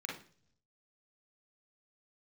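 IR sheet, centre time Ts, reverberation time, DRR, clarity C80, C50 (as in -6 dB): 35 ms, not exponential, -2.5 dB, 12.0 dB, 4.0 dB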